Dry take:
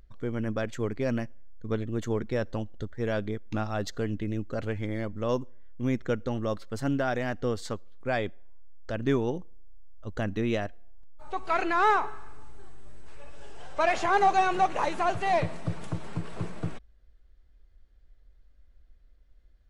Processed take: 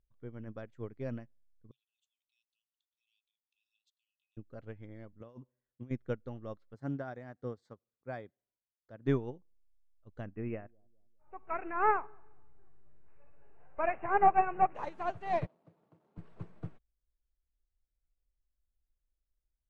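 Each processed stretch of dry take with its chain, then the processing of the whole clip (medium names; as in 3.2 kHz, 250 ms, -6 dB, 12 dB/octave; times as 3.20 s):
1.71–4.37 s: rippled Chebyshev high-pass 2.5 kHz, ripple 6 dB + upward compressor, threshold -53 dBFS
5.20–5.91 s: high-pass 84 Hz + compressor with a negative ratio -32 dBFS
6.74–9.07 s: high-pass 95 Hz + peaking EQ 2.8 kHz -11 dB 0.29 oct
10.26–14.75 s: steep low-pass 2.7 kHz 96 dB/octave + bucket-brigade echo 202 ms, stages 1024, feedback 41%, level -19 dB
15.46–16.18 s: median filter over 25 samples + high-pass 250 Hz
whole clip: low-pass 1.8 kHz 6 dB/octave; peaking EQ 130 Hz +4.5 dB 0.35 oct; upward expansion 2.5:1, over -36 dBFS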